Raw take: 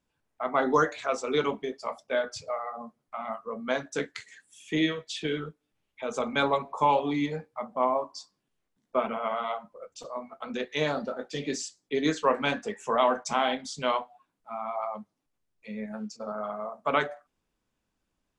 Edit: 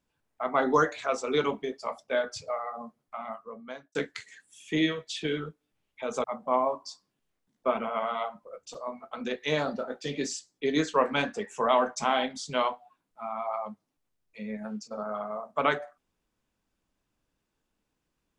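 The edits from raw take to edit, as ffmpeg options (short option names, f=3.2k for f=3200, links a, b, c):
-filter_complex "[0:a]asplit=3[a][b][c];[a]atrim=end=3.95,asetpts=PTS-STARTPTS,afade=t=out:st=3:d=0.95[d];[b]atrim=start=3.95:end=6.242,asetpts=PTS-STARTPTS,afade=t=in:d=0.004:c=hsin[e];[c]atrim=start=7.528[f];[d][e]concat=n=2:v=0:a=1[g];[g][f]acrossfade=d=0.004:c1=hsin:c2=hsin"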